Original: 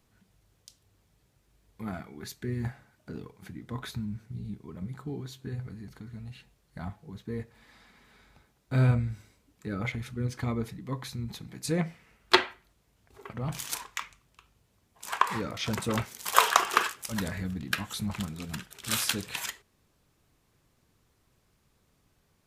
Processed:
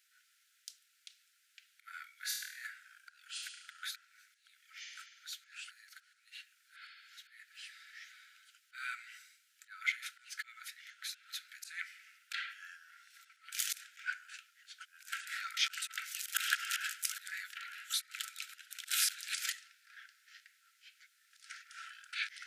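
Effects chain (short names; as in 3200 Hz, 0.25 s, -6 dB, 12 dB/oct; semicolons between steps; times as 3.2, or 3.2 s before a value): auto swell 0.226 s; 2.14–2.67 flutter echo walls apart 4.3 m, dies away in 0.65 s; echoes that change speed 0.111 s, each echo -6 st, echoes 3, each echo -6 dB; brick-wall FIR high-pass 1300 Hz; gain +3 dB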